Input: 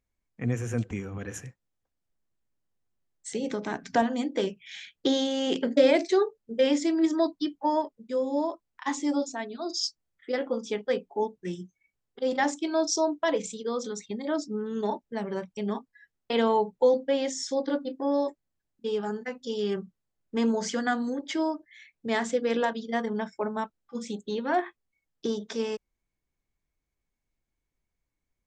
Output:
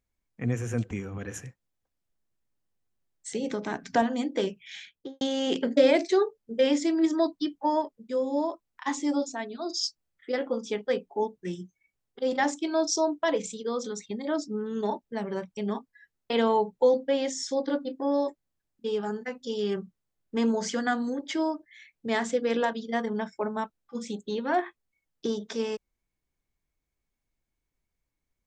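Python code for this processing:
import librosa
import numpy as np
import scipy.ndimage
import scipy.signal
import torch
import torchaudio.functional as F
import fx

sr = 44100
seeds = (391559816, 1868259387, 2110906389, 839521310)

y = fx.studio_fade_out(x, sr, start_s=4.76, length_s=0.45)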